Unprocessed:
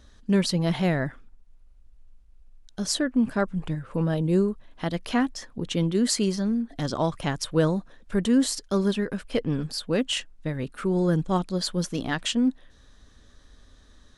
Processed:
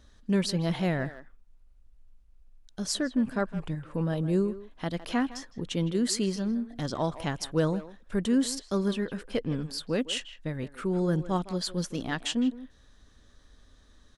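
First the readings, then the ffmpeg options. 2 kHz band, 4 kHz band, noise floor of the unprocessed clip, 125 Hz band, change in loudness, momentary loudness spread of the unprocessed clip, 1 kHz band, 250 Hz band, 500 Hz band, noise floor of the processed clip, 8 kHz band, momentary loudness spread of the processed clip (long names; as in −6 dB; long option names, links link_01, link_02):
−4.0 dB, −4.0 dB, −55 dBFS, −4.0 dB, −4.0 dB, 8 LU, −4.0 dB, −4.0 dB, −4.0 dB, −58 dBFS, −4.0 dB, 8 LU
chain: -filter_complex "[0:a]asplit=2[link_01][link_02];[link_02]adelay=160,highpass=300,lowpass=3400,asoftclip=type=hard:threshold=-18.5dB,volume=-13dB[link_03];[link_01][link_03]amix=inputs=2:normalize=0,volume=-4dB"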